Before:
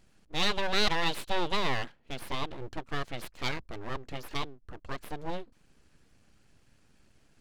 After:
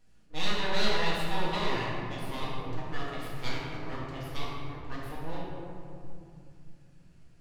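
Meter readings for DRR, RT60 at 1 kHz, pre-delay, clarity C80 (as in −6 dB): −6.5 dB, 2.3 s, 4 ms, 0.5 dB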